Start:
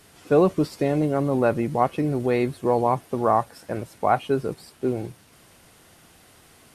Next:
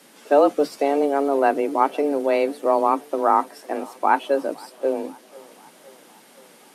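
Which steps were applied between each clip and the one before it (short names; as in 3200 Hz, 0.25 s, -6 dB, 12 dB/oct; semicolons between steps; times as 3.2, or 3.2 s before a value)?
tape echo 0.512 s, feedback 67%, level -23 dB; frequency shift +140 Hz; gain +2 dB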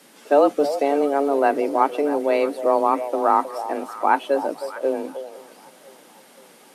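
delay with a stepping band-pass 0.315 s, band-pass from 620 Hz, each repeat 1.4 oct, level -9 dB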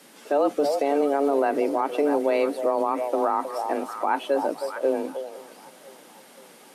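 limiter -13 dBFS, peak gain reduction 9.5 dB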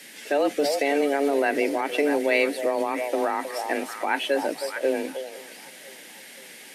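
resonant high shelf 1500 Hz +7 dB, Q 3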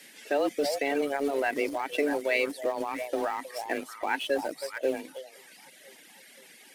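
reverb removal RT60 0.98 s; in parallel at -9.5 dB: sample gate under -26.5 dBFS; on the sum: gain -6 dB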